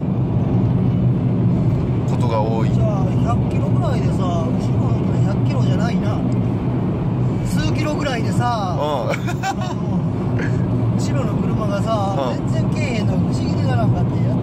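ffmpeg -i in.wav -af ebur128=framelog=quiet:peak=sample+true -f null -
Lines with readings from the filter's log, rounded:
Integrated loudness:
  I:         -18.8 LUFS
  Threshold: -28.8 LUFS
Loudness range:
  LRA:         2.2 LU
  Threshold: -39.0 LUFS
  LRA low:   -20.1 LUFS
  LRA high:  -17.9 LUFS
Sample peak:
  Peak:       -6.9 dBFS
True peak:
  Peak:       -6.9 dBFS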